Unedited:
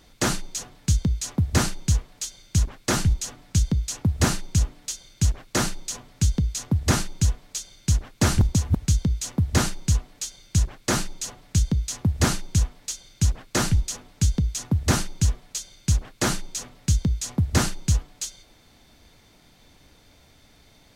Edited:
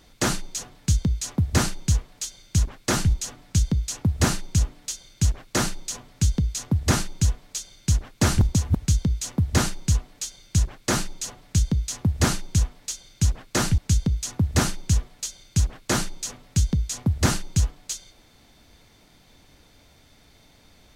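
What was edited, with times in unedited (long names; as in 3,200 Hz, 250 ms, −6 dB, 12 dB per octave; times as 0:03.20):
0:13.78–0:14.10: remove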